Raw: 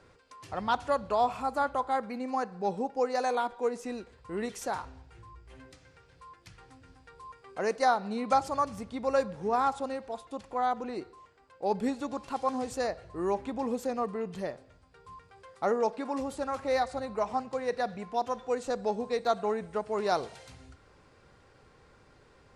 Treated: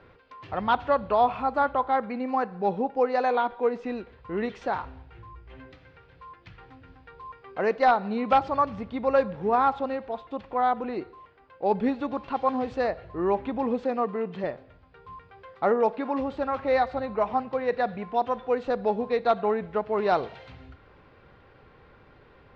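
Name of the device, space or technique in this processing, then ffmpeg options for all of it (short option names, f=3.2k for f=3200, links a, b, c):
synthesiser wavefolder: -filter_complex "[0:a]asettb=1/sr,asplit=3[a][b][c];[a]atrim=end=13.844[d];[b]atrim=start=13.84:end=14.44,asetpts=PTS-STARTPTS,afade=t=in:d=0.004:c=qsin,afade=t=out:st=0.596:d=0.004:c=qsin,highpass=160[e];[c]atrim=start=14.436[f];[d][e]acrossfade=d=0.004:c1=hsin:c2=qsin[g];[g][f]acrossfade=d=0.004:c1=qsin:c2=hsin,aeval=exprs='0.15*(abs(mod(val(0)/0.15+3,4)-2)-1)':c=same,lowpass=f=3.5k:w=0.5412,lowpass=f=3.5k:w=1.3066,volume=5dB"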